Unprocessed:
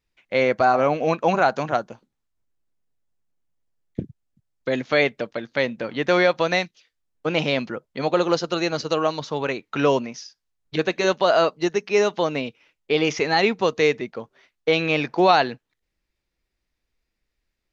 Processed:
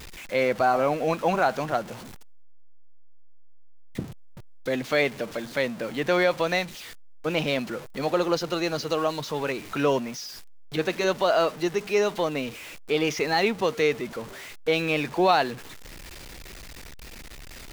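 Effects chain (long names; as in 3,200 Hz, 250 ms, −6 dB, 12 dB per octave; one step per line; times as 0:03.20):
converter with a step at zero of −31 dBFS
level −4.5 dB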